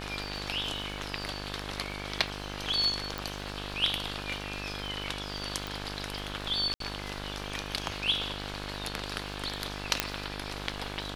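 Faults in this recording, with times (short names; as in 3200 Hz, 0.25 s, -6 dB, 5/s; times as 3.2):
buzz 50 Hz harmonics 35 -40 dBFS
crackle 100/s -43 dBFS
3.18 pop
5.67 pop
6.74–6.8 gap 63 ms
10 pop -6 dBFS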